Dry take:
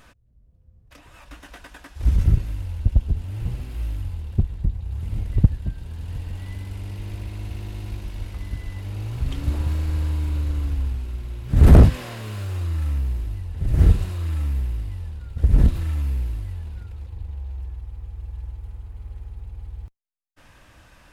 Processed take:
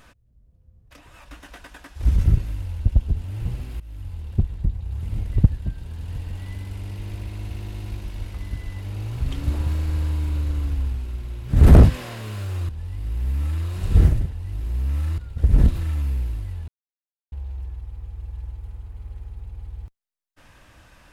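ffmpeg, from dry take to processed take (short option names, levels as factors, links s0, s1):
-filter_complex "[0:a]asplit=6[s0][s1][s2][s3][s4][s5];[s0]atrim=end=3.8,asetpts=PTS-STARTPTS,afade=t=out:st=3.796:d=0.004:c=hsin:silence=0.1[s6];[s1]atrim=start=3.8:end=12.692,asetpts=PTS-STARTPTS,afade=t=in:d=0.71:c=qsin:silence=0.1[s7];[s2]atrim=start=12.688:end=15.182,asetpts=PTS-STARTPTS,areverse[s8];[s3]atrim=start=15.178:end=16.68,asetpts=PTS-STARTPTS,afade=t=out:st=1.498:d=0.004:c=hsin[s9];[s4]atrim=start=16.68:end=17.32,asetpts=PTS-STARTPTS,volume=0[s10];[s5]atrim=start=17.32,asetpts=PTS-STARTPTS,afade=t=in:d=0.004:c=hsin[s11];[s6][s7]concat=n=2:v=0:a=1[s12];[s12][s8]acrossfade=d=0.004:c1=hsin:c2=hsin[s13];[s9][s10][s11]concat=n=3:v=0:a=1[s14];[s13][s14]acrossfade=d=0.004:c1=hsin:c2=hsin"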